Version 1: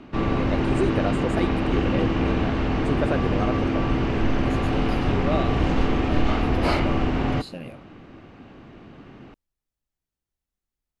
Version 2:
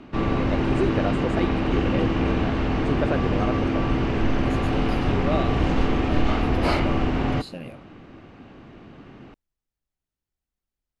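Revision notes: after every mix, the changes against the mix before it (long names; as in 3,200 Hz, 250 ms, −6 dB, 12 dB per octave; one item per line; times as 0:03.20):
first voice: add high-frequency loss of the air 60 metres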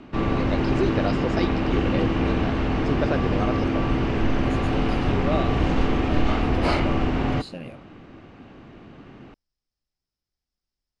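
first voice: add low-pass with resonance 5,200 Hz, resonance Q 9.2
master: add low-pass filter 9,700 Hz 24 dB per octave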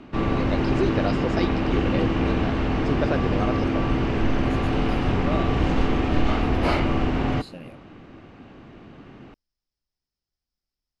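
second voice −4.0 dB
master: remove low-pass filter 9,700 Hz 24 dB per octave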